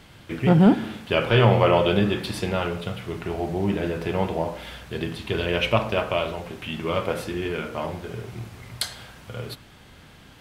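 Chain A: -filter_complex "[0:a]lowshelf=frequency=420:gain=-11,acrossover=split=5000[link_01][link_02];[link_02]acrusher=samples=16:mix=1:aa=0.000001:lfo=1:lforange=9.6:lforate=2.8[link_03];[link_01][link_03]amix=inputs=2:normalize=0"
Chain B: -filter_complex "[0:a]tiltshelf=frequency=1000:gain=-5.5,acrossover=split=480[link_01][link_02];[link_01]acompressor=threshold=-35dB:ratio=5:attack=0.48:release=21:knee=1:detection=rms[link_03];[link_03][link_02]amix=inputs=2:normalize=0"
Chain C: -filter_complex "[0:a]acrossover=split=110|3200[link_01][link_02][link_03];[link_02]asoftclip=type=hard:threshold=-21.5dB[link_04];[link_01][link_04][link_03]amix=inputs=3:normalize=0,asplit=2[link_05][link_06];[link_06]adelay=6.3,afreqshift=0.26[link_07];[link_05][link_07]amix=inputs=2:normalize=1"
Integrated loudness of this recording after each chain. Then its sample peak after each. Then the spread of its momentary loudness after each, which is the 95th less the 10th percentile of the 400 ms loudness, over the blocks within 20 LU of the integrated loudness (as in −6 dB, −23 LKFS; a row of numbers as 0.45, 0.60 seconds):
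−28.5, −27.0, −30.5 LKFS; −6.5, −2.5, −11.0 dBFS; 19, 16, 13 LU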